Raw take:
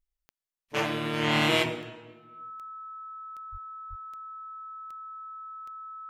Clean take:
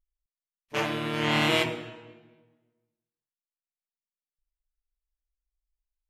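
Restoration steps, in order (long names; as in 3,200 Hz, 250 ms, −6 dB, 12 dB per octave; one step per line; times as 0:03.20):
click removal
notch filter 1,300 Hz, Q 30
high-pass at the plosives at 0:03.51/0:03.89
level correction +7 dB, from 0:02.50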